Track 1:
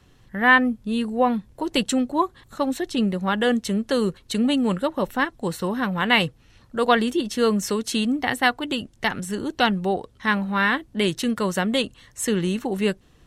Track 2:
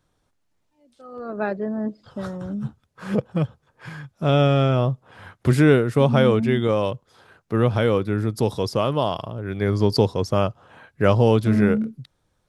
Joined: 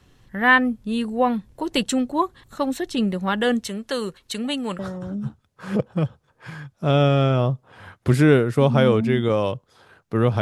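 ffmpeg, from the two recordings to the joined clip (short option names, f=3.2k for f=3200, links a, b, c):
-filter_complex "[0:a]asettb=1/sr,asplit=3[a][b][c];[a]atrim=end=3.674[d];[b]atrim=start=3.67:end=4.79,asetpts=PTS-STARTPTS,afade=t=in:d=0.004:c=qsin,afade=t=out:st=1.116:d=0.004:c=qsin,lowshelf=f=410:g=-9.5[e];[c]atrim=start=4.786[f];[d][e]acrossfade=d=0.004:c1=hsin:c2=qsin[g];[g][f]acrossfade=d=0.004:c1=qsin:c2=hsin,apad=whole_dur=10.41,atrim=end=10.41,atrim=end=4.792[h];[1:a]atrim=start=2.178:end=7.8[i];[h][i]acrossfade=d=0.004:c1=hsin:c2=hsin"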